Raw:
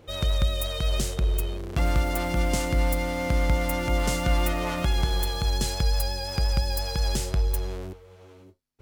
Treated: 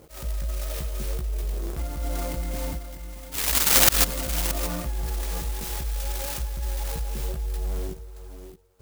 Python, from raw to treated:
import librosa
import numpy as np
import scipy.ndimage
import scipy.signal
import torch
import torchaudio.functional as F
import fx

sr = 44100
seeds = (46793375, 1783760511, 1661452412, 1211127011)

y = fx.spec_paint(x, sr, seeds[0], shape='rise', start_s=3.31, length_s=0.72, low_hz=3500.0, high_hz=7200.0, level_db=-14.0)
y = fx.high_shelf(y, sr, hz=5000.0, db=11.0, at=(5.03, 6.43))
y = fx.level_steps(y, sr, step_db=18)
y = fx.tone_stack(y, sr, knobs='5-5-5', at=(2.76, 3.74), fade=0.02)
y = fx.chorus_voices(y, sr, voices=6, hz=0.95, base_ms=16, depth_ms=3.0, mix_pct=45)
y = fx.auto_swell(y, sr, attack_ms=193.0)
y = y + 10.0 ** (-12.5 / 20.0) * np.pad(y, (int(625 * sr / 1000.0), 0))[:len(y)]
y = fx.clock_jitter(y, sr, seeds[1], jitter_ms=0.1)
y = y * librosa.db_to_amplitude(7.5)